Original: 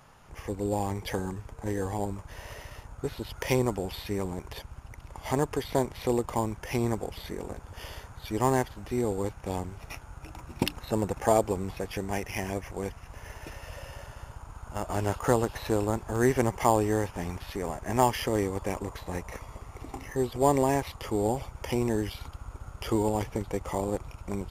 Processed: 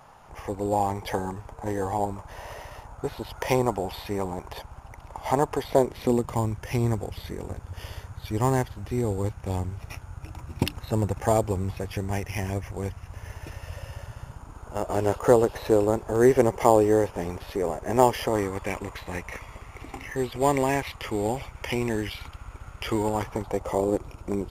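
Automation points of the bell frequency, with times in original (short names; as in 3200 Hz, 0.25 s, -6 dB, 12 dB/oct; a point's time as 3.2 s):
bell +9 dB 1.2 oct
5.63 s 800 Hz
6.41 s 95 Hz
14.09 s 95 Hz
14.71 s 470 Hz
18.14 s 470 Hz
18.62 s 2300 Hz
22.87 s 2300 Hz
23.95 s 340 Hz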